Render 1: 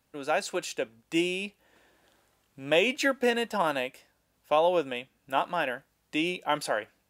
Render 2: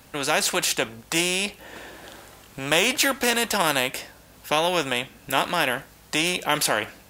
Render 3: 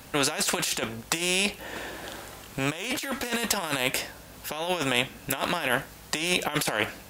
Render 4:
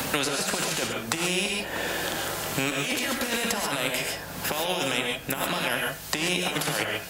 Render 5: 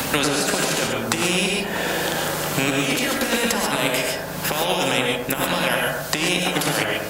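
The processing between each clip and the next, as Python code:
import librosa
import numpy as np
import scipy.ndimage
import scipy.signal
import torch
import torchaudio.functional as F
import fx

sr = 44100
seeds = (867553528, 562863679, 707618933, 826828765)

y1 = fx.spectral_comp(x, sr, ratio=2.0)
y1 = F.gain(torch.from_numpy(y1), 5.0).numpy()
y2 = fx.over_compress(y1, sr, threshold_db=-26.0, ratio=-0.5)
y3 = fx.rev_gated(y2, sr, seeds[0], gate_ms=160, shape='rising', drr_db=1.0)
y3 = fx.band_squash(y3, sr, depth_pct=100)
y3 = F.gain(torch.from_numpy(y3), -3.0).numpy()
y4 = fx.echo_bbd(y3, sr, ms=105, stages=1024, feedback_pct=49, wet_db=-3)
y4 = F.gain(torch.from_numpy(y4), 5.0).numpy()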